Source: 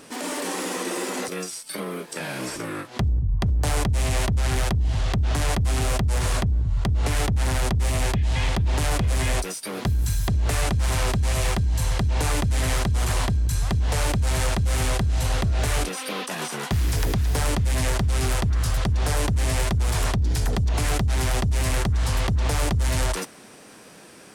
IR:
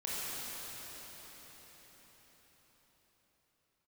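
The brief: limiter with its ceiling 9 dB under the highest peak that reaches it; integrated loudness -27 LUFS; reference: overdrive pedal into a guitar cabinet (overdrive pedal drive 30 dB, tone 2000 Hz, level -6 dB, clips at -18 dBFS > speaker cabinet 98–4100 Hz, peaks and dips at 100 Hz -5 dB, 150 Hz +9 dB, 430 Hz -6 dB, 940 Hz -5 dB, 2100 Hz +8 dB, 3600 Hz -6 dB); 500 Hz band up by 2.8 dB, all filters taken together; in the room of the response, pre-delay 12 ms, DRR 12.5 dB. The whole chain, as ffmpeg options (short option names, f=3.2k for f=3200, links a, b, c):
-filter_complex "[0:a]equalizer=f=500:t=o:g=6.5,alimiter=limit=-21dB:level=0:latency=1,asplit=2[a][b];[1:a]atrim=start_sample=2205,adelay=12[c];[b][c]afir=irnorm=-1:irlink=0,volume=-17.5dB[d];[a][d]amix=inputs=2:normalize=0,asplit=2[e][f];[f]highpass=f=720:p=1,volume=30dB,asoftclip=type=tanh:threshold=-18dB[g];[e][g]amix=inputs=2:normalize=0,lowpass=f=2k:p=1,volume=-6dB,highpass=98,equalizer=f=100:t=q:w=4:g=-5,equalizer=f=150:t=q:w=4:g=9,equalizer=f=430:t=q:w=4:g=-6,equalizer=f=940:t=q:w=4:g=-5,equalizer=f=2.1k:t=q:w=4:g=8,equalizer=f=3.6k:t=q:w=4:g=-6,lowpass=f=4.1k:w=0.5412,lowpass=f=4.1k:w=1.3066,volume=-0.5dB"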